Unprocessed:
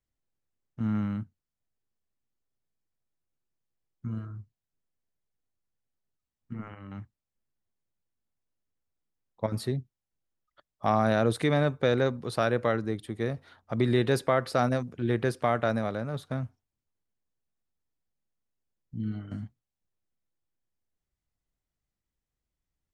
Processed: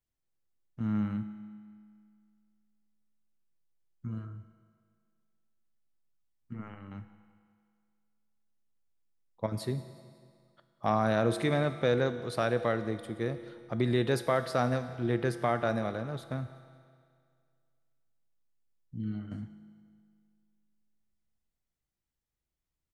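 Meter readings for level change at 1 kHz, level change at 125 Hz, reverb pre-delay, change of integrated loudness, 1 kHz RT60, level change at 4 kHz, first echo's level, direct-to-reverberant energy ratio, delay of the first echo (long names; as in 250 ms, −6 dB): −3.0 dB, −3.0 dB, 6 ms, −3.0 dB, 2.2 s, −2.5 dB, −22.5 dB, 10.0 dB, 182 ms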